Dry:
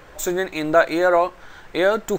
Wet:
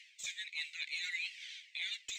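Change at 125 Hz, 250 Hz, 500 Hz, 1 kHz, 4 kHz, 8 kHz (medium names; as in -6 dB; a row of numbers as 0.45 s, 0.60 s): under -40 dB, under -40 dB, under -40 dB, under -40 dB, -4.5 dB, no reading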